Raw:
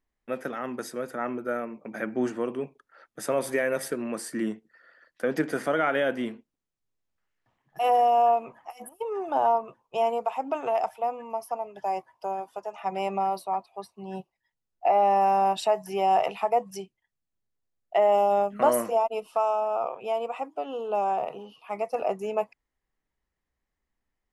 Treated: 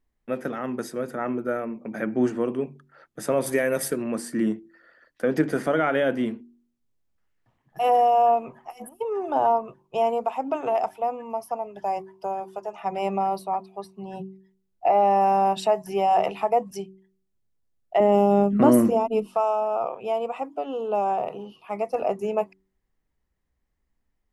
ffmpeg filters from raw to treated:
-filter_complex "[0:a]asettb=1/sr,asplit=3[s0][s1][s2];[s0]atrim=end=3.464[s3];[s1]atrim=start=3.46:end=4.04,asetpts=PTS-STARTPTS,afade=t=in:d=0.004:c=qsin,afade=t=out:st=0.576:d=0.004:c=qsin,aemphasis=mode=production:type=cd[s4];[s2]atrim=start=4.036[s5];[s3][s4]acrossfade=d=0.004:c1=hsin:c2=qsin[s6];[s6][s5]acrossfade=d=0.004:c1=qsin:c2=hsin,asettb=1/sr,asplit=3[s7][s8][s9];[s7]atrim=end=18.004[s10];[s8]atrim=start=18:end=19.27,asetpts=PTS-STARTPTS,afade=t=in:d=0.004:c=qsin,afade=t=out:st=1.266:d=0.004:c=qsin,lowshelf=f=430:t=q:w=1.5:g=10[s11];[s9]atrim=start=19.266[s12];[s10][s11]acrossfade=d=0.004:c1=hsin:c2=qsin[s13];[s13][s12]acrossfade=d=0.004:c1=qsin:c2=hsin,lowshelf=f=370:g=9,bandreject=f=47.73:t=h:w=4,bandreject=f=95.46:t=h:w=4,bandreject=f=143.19:t=h:w=4,bandreject=f=190.92:t=h:w=4,bandreject=f=238.65:t=h:w=4,bandreject=f=286.38:t=h:w=4,bandreject=f=334.11:t=h:w=4,bandreject=f=381.84:t=h:w=4"

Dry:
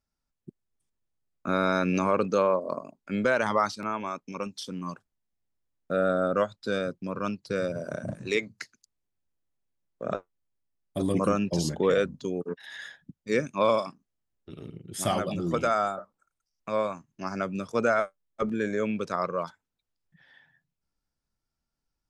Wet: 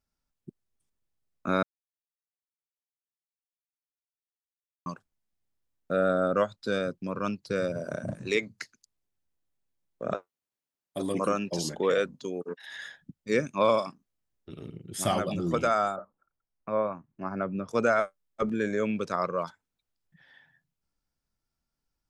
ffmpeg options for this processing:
-filter_complex "[0:a]asettb=1/sr,asplit=3[s0][s1][s2];[s0]atrim=end=10.144[s3];[s1]atrim=start=10.14:end=12.7,asetpts=PTS-STARTPTS,afade=t=in:d=0.004:c=qsin,afade=t=out:st=2.556:d=0.004:c=qsin,highpass=f=350:p=1[s4];[s2]atrim=start=12.696[s5];[s3][s4]acrossfade=d=0.004:c1=hsin:c2=qsin[s6];[s6][s5]acrossfade=d=0.004:c1=qsin:c2=hsin,asettb=1/sr,asplit=3[s7][s8][s9];[s7]atrim=end=15.964[s10];[s8]atrim=start=15.96:end=17.68,asetpts=PTS-STARTPTS,afade=t=in:d=0.004:c=qsin,afade=t=out:st=1.716:d=0.004:c=qsin,lowpass=1500[s11];[s9]atrim=start=17.676[s12];[s10][s11]acrossfade=d=0.004:c1=hsin:c2=qsin[s13];[s13][s12]acrossfade=d=0.004:c1=qsin:c2=hsin,asplit=3[s14][s15][s16];[s14]atrim=end=1.63,asetpts=PTS-STARTPTS,afade=t=out:st=1.626:d=0.004:c=hsin[s17];[s15]atrim=start=1.63:end=4.86,asetpts=PTS-STARTPTS,volume=0[s18];[s16]atrim=start=4.86,asetpts=PTS-STARTPTS,afade=t=in:d=0.004:c=hsin[s19];[s17][s18][s19]concat=n=3:v=0:a=1"

